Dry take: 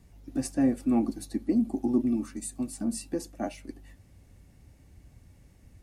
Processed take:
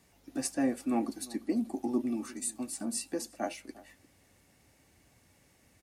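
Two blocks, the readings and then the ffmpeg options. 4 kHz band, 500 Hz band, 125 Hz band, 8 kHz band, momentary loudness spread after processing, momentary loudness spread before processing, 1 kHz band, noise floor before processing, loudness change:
+3.0 dB, -2.5 dB, -10.0 dB, +3.0 dB, 7 LU, 10 LU, +0.5 dB, -58 dBFS, -4.5 dB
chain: -filter_complex "[0:a]highpass=f=670:p=1,asplit=2[a][b];[b]adelay=349.9,volume=-20dB,highshelf=f=4k:g=-7.87[c];[a][c]amix=inputs=2:normalize=0,volume=3dB"

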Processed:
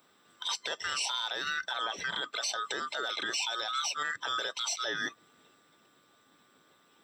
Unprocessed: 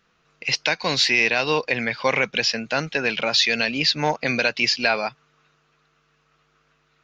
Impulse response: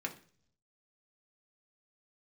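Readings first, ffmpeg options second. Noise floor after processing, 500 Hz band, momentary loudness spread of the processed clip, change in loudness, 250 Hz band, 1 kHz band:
-66 dBFS, -18.0 dB, 3 LU, -12.0 dB, -21.5 dB, -8.5 dB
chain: -af "afftfilt=real='real(if(lt(b,960),b+48*(1-2*mod(floor(b/48),2)),b),0)':imag='imag(if(lt(b,960),b+48*(1-2*mod(floor(b/48),2)),b),0)':win_size=2048:overlap=0.75,aexciter=amount=5.4:drive=6.1:freq=8.1k,acompressor=threshold=-28dB:ratio=3,alimiter=limit=-23dB:level=0:latency=1:release=22,highpass=170"

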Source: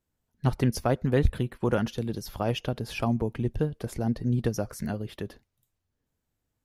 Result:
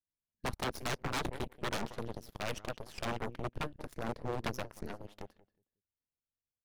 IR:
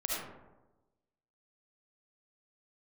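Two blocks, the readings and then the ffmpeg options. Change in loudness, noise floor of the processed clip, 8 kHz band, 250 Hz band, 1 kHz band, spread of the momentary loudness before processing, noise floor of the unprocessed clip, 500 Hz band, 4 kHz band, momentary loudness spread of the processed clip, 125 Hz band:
-11.0 dB, under -85 dBFS, -4.5 dB, -14.5 dB, -4.0 dB, 8 LU, -82 dBFS, -11.0 dB, -3.0 dB, 9 LU, -16.0 dB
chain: -filter_complex "[0:a]asplit=2[a][b];[b]adelay=182,lowpass=f=2.4k:p=1,volume=-11.5dB,asplit=2[c][d];[d]adelay=182,lowpass=f=2.4k:p=1,volume=0.26,asplit=2[e][f];[f]adelay=182,lowpass=f=2.4k:p=1,volume=0.26[g];[a][c][e][g]amix=inputs=4:normalize=0,aeval=exprs='0.355*(cos(1*acos(clip(val(0)/0.355,-1,1)))-cos(1*PI/2))+0.00501*(cos(3*acos(clip(val(0)/0.355,-1,1)))-cos(3*PI/2))+0.00794*(cos(5*acos(clip(val(0)/0.355,-1,1)))-cos(5*PI/2))+0.0501*(cos(7*acos(clip(val(0)/0.355,-1,1)))-cos(7*PI/2))+0.0355*(cos(8*acos(clip(val(0)/0.355,-1,1)))-cos(8*PI/2))':c=same,aeval=exprs='0.0596*(abs(mod(val(0)/0.0596+3,4)-2)-1)':c=same,volume=-1.5dB"

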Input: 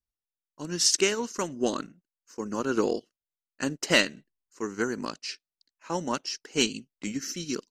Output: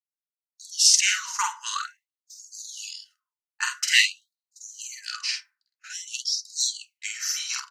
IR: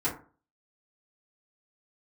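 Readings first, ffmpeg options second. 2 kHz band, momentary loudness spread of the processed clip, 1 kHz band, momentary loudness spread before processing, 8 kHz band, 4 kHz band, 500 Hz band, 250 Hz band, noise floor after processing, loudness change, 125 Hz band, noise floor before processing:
+4.5 dB, 19 LU, +1.0 dB, 15 LU, +7.0 dB, +6.0 dB, under -40 dB, under -40 dB, under -85 dBFS, +5.0 dB, under -40 dB, under -85 dBFS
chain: -filter_complex "[0:a]highpass=590,agate=range=-17dB:threshold=-57dB:ratio=16:detection=peak,asplit=2[a][b];[b]alimiter=limit=-18dB:level=0:latency=1:release=200,volume=-2.5dB[c];[a][c]amix=inputs=2:normalize=0,asplit=2[d][e];[e]adelay=48,volume=-3dB[f];[d][f]amix=inputs=2:normalize=0,asplit=2[g][h];[1:a]atrim=start_sample=2205[i];[h][i]afir=irnorm=-1:irlink=0,volume=-11dB[j];[g][j]amix=inputs=2:normalize=0,afftfilt=real='re*gte(b*sr/1024,800*pow(3800/800,0.5+0.5*sin(2*PI*0.5*pts/sr)))':imag='im*gte(b*sr/1024,800*pow(3800/800,0.5+0.5*sin(2*PI*0.5*pts/sr)))':win_size=1024:overlap=0.75"

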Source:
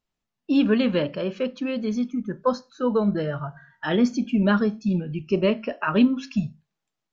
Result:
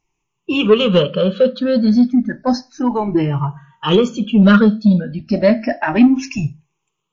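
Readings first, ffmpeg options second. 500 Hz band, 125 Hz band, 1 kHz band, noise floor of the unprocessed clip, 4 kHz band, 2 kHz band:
+9.0 dB, +10.0 dB, +8.0 dB, -84 dBFS, +11.5 dB, +7.5 dB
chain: -af "afftfilt=real='re*pow(10,20/40*sin(2*PI*(0.71*log(max(b,1)*sr/1024/100)/log(2)-(0.31)*(pts-256)/sr)))':imag='im*pow(10,20/40*sin(2*PI*(0.71*log(max(b,1)*sr/1024/100)/log(2)-(0.31)*(pts-256)/sr)))':win_size=1024:overlap=0.75,acontrast=68" -ar 16000 -c:a libmp3lame -b:a 32k

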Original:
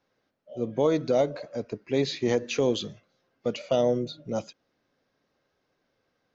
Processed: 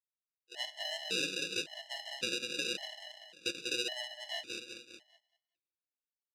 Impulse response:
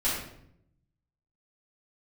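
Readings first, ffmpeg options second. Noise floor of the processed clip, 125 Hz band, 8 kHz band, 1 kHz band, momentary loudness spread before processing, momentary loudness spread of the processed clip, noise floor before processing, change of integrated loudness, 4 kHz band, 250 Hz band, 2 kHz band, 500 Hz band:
under -85 dBFS, -23.5 dB, n/a, -15.0 dB, 11 LU, 14 LU, -76 dBFS, -9.0 dB, +3.0 dB, -18.0 dB, +2.5 dB, -19.5 dB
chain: -filter_complex "[0:a]acrossover=split=620[a][b];[a]aeval=exprs='val(0)*(1-1/2+1/2*cos(2*PI*3.2*n/s))':c=same[c];[b]aeval=exprs='val(0)*(1-1/2-1/2*cos(2*PI*3.2*n/s))':c=same[d];[c][d]amix=inputs=2:normalize=0,aecho=1:1:194|388|582|776|970|1164:0.398|0.215|0.116|0.0627|0.0339|0.0183,aeval=exprs='val(0)*sin(2*PI*130*n/s)':c=same,agate=range=-33dB:threshold=-52dB:ratio=3:detection=peak,asplit=2[e][f];[1:a]atrim=start_sample=2205[g];[f][g]afir=irnorm=-1:irlink=0,volume=-29.5dB[h];[e][h]amix=inputs=2:normalize=0,acrusher=samples=40:mix=1:aa=0.000001,highpass=220,lowpass=3.6k,asplit=2[i][j];[j]asoftclip=type=tanh:threshold=-27.5dB,volume=-11.5dB[k];[i][k]amix=inputs=2:normalize=0,alimiter=limit=-23.5dB:level=0:latency=1:release=338,aexciter=amount=9.3:drive=6.9:freq=2.1k,aecho=1:1:6.1:0.36,afftfilt=real='re*gt(sin(2*PI*0.9*pts/sr)*(1-2*mod(floor(b*sr/1024/570),2)),0)':imag='im*gt(sin(2*PI*0.9*pts/sr)*(1-2*mod(floor(b*sr/1024/570),2)),0)':win_size=1024:overlap=0.75,volume=-4.5dB"

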